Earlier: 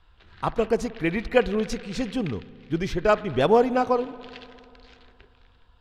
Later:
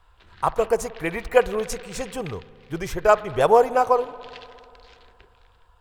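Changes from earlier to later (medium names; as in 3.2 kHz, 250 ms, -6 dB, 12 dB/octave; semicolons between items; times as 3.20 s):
speech: add graphic EQ 250/500/1000/4000/8000 Hz -11/+4/+6/-7/+7 dB; master: remove distance through air 52 m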